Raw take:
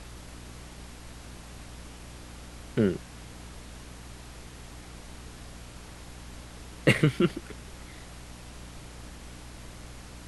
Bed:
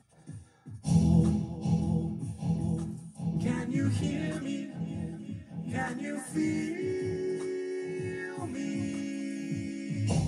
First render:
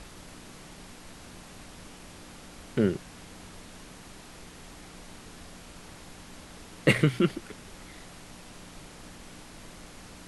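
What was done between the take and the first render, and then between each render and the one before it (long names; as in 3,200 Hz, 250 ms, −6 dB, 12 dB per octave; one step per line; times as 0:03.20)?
mains-hum notches 60/120 Hz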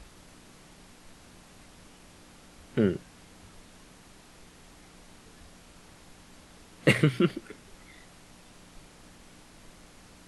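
noise reduction from a noise print 6 dB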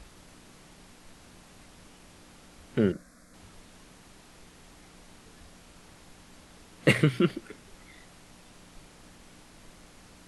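0:02.92–0:03.34: phaser with its sweep stopped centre 580 Hz, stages 8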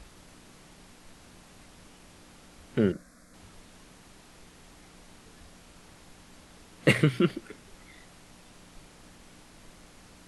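no processing that can be heard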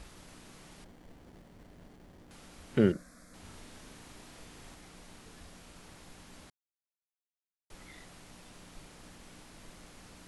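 0:00.84–0:02.31: windowed peak hold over 33 samples
0:03.41–0:04.75: double-tracking delay 37 ms −3 dB
0:06.50–0:07.70: silence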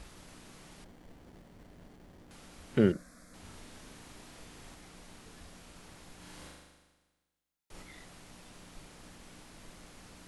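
0:06.17–0:07.82: flutter between parallel walls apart 6.8 metres, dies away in 1.3 s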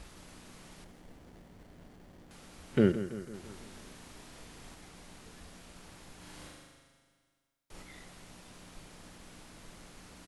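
repeating echo 166 ms, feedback 56%, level −12 dB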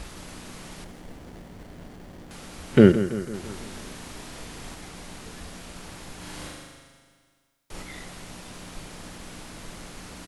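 level +11 dB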